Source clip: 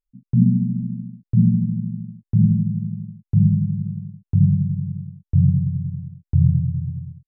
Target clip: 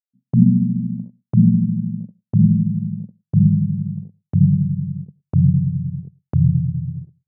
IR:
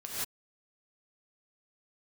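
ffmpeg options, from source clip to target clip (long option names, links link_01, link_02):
-filter_complex "[0:a]agate=range=-21dB:threshold=-29dB:ratio=16:detection=peak,highpass=130,asplit=2[link_01][link_02];[1:a]atrim=start_sample=2205,atrim=end_sample=6174,asetrate=52920,aresample=44100[link_03];[link_02][link_03]afir=irnorm=-1:irlink=0,volume=-24.5dB[link_04];[link_01][link_04]amix=inputs=2:normalize=0,volume=4dB"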